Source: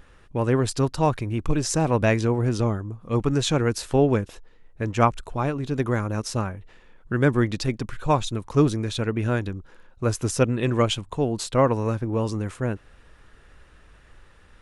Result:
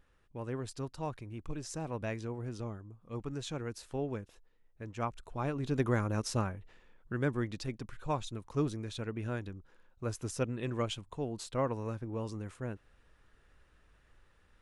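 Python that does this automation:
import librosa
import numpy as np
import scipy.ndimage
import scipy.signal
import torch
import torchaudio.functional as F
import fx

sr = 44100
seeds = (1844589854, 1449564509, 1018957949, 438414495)

y = fx.gain(x, sr, db=fx.line((5.02, -17.0), (5.67, -6.0), (6.4, -6.0), (7.37, -13.0)))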